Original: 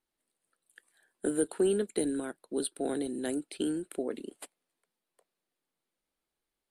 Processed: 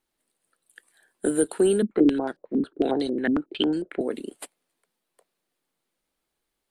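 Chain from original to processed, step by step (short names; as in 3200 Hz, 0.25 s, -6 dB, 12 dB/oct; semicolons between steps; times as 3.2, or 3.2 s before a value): 1.82–4.01 stepped low-pass 11 Hz 230–4800 Hz; gain +6.5 dB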